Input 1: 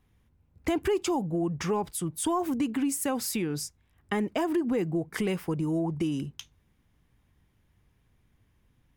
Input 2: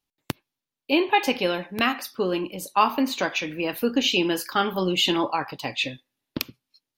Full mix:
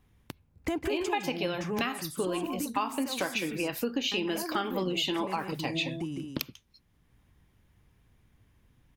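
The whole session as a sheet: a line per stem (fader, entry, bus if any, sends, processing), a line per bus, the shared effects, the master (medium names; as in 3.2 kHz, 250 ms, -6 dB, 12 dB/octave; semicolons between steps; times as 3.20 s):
+2.5 dB, 0.00 s, no send, echo send -14 dB, auto duck -10 dB, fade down 1.85 s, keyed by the second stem
0.61 s -13 dB -> 1.18 s -2 dB, 0.00 s, no send, no echo send, none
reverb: none
echo: delay 159 ms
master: compression 5:1, threshold -27 dBFS, peak gain reduction 11 dB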